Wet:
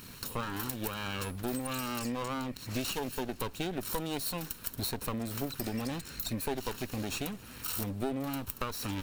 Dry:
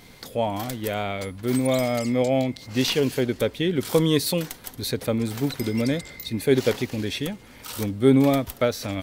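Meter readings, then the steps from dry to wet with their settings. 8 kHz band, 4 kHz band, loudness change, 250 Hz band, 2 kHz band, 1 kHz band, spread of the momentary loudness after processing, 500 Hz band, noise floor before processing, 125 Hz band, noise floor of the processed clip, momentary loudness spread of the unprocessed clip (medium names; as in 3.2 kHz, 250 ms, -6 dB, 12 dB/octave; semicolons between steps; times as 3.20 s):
-5.0 dB, -9.5 dB, -11.5 dB, -13.0 dB, -8.5 dB, -6.5 dB, 3 LU, -16.0 dB, -48 dBFS, -12.0 dB, -49 dBFS, 9 LU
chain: comb filter that takes the minimum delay 0.73 ms; treble shelf 11 kHz +11 dB; compression 6:1, threshold -32 dBFS, peak gain reduction 17 dB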